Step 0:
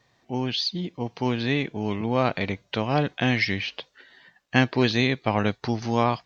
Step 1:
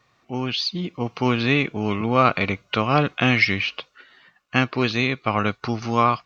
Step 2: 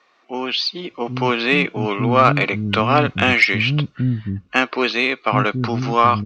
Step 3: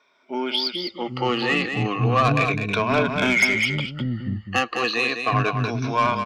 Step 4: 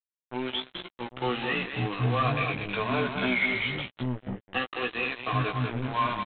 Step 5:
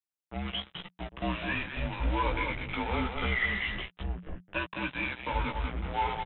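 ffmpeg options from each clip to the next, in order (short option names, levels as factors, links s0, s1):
-af "superequalizer=10b=2.82:12b=1.78,dynaudnorm=f=370:g=5:m=1.78"
-filter_complex "[0:a]lowpass=5100,acrossover=split=260[s0][s1];[s0]adelay=780[s2];[s2][s1]amix=inputs=2:normalize=0,acontrast=34"
-af "afftfilt=real='re*pow(10,15/40*sin(2*PI*(1.6*log(max(b,1)*sr/1024/100)/log(2)-(-0.33)*(pts-256)/sr)))':imag='im*pow(10,15/40*sin(2*PI*(1.6*log(max(b,1)*sr/1024/100)/log(2)-(-0.33)*(pts-256)/sr)))':win_size=1024:overlap=0.75,asoftclip=type=tanh:threshold=0.501,aecho=1:1:204:0.447,volume=0.531"
-filter_complex "[0:a]aresample=8000,acrusher=bits=3:mix=0:aa=0.5,aresample=44100,asplit=2[s0][s1];[s1]adelay=16,volume=0.596[s2];[s0][s2]amix=inputs=2:normalize=0,volume=0.355"
-af "afreqshift=-180,volume=0.708"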